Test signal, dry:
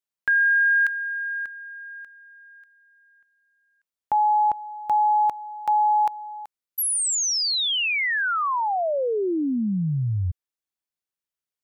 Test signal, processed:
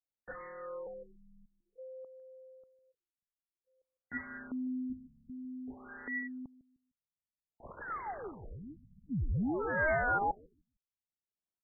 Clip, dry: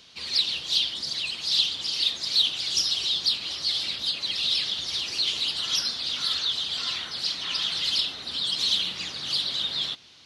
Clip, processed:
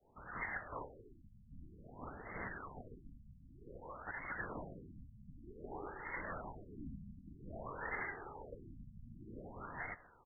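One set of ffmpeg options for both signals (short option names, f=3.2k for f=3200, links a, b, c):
-filter_complex "[0:a]lowpass=4.3k,adynamicequalizer=threshold=0.0158:dfrequency=1200:dqfactor=0.73:tfrequency=1200:tqfactor=0.73:attack=5:release=100:ratio=0.375:range=2.5:mode=boostabove:tftype=bell,aeval=exprs='(mod(12.6*val(0)+1,2)-1)/12.6':c=same,aeval=exprs='val(0)*sin(2*PI*1100*n/s)':c=same,flanger=delay=0.3:depth=2.2:regen=35:speed=0.43:shape=sinusoidal,asplit=2[a][b];[b]adelay=152,lowpass=f=940:p=1,volume=-17dB,asplit=2[c][d];[d]adelay=152,lowpass=f=940:p=1,volume=0.29,asplit=2[e][f];[f]adelay=152,lowpass=f=940:p=1,volume=0.29[g];[c][e][g]amix=inputs=3:normalize=0[h];[a][h]amix=inputs=2:normalize=0,afftfilt=real='re*lt(b*sr/1024,240*pow(2200/240,0.5+0.5*sin(2*PI*0.53*pts/sr)))':imag='im*lt(b*sr/1024,240*pow(2200/240,0.5+0.5*sin(2*PI*0.53*pts/sr)))':win_size=1024:overlap=0.75,volume=2.5dB"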